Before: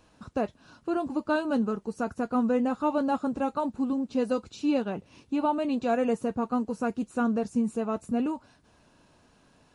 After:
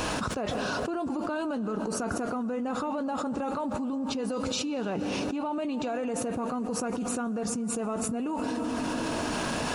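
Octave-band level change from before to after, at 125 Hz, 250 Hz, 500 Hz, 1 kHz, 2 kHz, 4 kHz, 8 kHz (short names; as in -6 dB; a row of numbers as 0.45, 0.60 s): +4.5 dB, -2.5 dB, -2.0 dB, -1.5 dB, +3.0 dB, +10.0 dB, n/a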